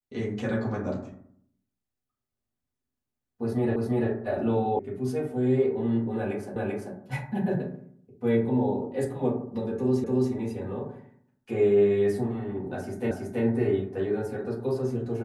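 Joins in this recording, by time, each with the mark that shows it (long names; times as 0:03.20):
0:03.76: the same again, the last 0.34 s
0:04.79: cut off before it has died away
0:06.56: the same again, the last 0.39 s
0:10.04: the same again, the last 0.28 s
0:13.11: the same again, the last 0.33 s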